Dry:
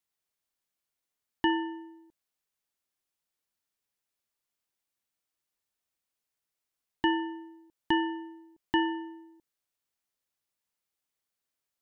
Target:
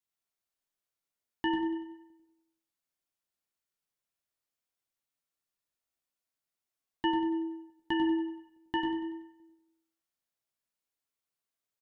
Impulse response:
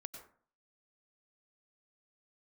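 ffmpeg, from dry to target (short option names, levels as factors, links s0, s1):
-filter_complex "[0:a]flanger=delay=8.8:depth=8:regen=45:speed=0.42:shape=sinusoidal,aecho=1:1:95|190|285|380|475:0.335|0.154|0.0709|0.0326|0.015[s0];[1:a]atrim=start_sample=2205,afade=t=out:st=0.36:d=0.01,atrim=end_sample=16317[s1];[s0][s1]afir=irnorm=-1:irlink=0,volume=1.58"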